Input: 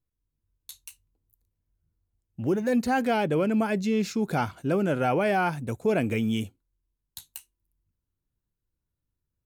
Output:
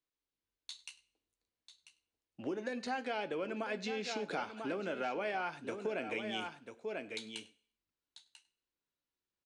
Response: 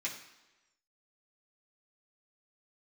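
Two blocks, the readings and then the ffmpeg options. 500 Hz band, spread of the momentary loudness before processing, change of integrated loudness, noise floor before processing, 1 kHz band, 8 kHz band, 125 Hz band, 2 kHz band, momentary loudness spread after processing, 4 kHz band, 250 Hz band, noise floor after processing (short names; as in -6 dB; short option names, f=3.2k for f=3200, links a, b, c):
-11.5 dB, 18 LU, -13.5 dB, -84 dBFS, -11.0 dB, -9.5 dB, -23.0 dB, -8.0 dB, 11 LU, -3.5 dB, -16.5 dB, under -85 dBFS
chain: -filter_complex "[0:a]acrossover=split=260 4900:gain=0.0794 1 0.1[a][b][c];[a][b][c]amix=inputs=3:normalize=0,asplit=2[d][e];[e]aecho=0:1:992:0.251[f];[d][f]amix=inputs=2:normalize=0,acompressor=threshold=-33dB:ratio=6,aresample=22050,aresample=44100,highshelf=f=2.4k:g=9.5,asplit=2[g][h];[h]adelay=99.13,volume=-21dB,highshelf=f=4k:g=-2.23[i];[g][i]amix=inputs=2:normalize=0,asplit=2[j][k];[1:a]atrim=start_sample=2205,asetrate=83790,aresample=44100,adelay=8[l];[k][l]afir=irnorm=-1:irlink=0,volume=-5.5dB[m];[j][m]amix=inputs=2:normalize=0,volume=-3dB"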